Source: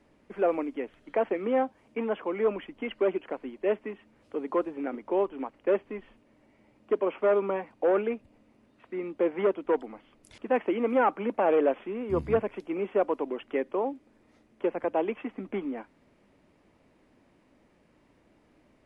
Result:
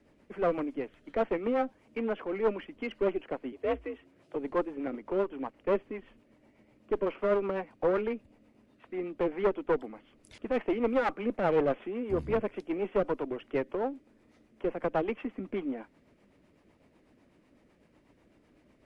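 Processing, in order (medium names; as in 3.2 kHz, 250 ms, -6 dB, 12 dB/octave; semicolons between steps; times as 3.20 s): single-diode clipper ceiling -26.5 dBFS; rotary cabinet horn 8 Hz; 3.52–4.35 s: frequency shift +54 Hz; trim +1.5 dB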